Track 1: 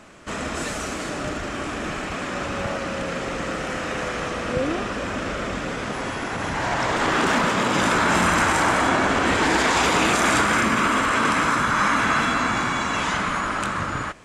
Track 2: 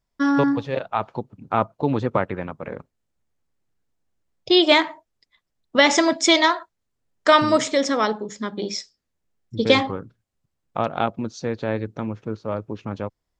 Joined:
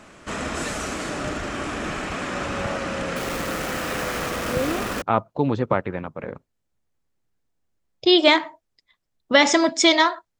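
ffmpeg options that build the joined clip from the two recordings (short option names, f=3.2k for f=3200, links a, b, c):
-filter_complex "[0:a]asettb=1/sr,asplit=3[a][b][c];[a]atrim=end=3.164[d];[b]atrim=start=3.16:end=5.02,asetpts=PTS-STARTPTS,afade=t=in:d=0.004:c=qsin,afade=t=out:st=1.856:d=0.004:c=qsin,acrusher=bits=6:dc=4:mix=0:aa=0.000001[e];[c]atrim=start=5.016[f];[d][e]acrossfade=d=0.004:c1=hsin:c2=qsin[g];[g][f]acrossfade=d=0.004:c1=qsin:c2=hsin,apad=whole_dur=10.39,atrim=end=10.39,atrim=end=5.022[h];[1:a]atrim=start=1.458:end=6.83[i];[h][i]acrossfade=d=0.004:c1=hsin:c2=hsin"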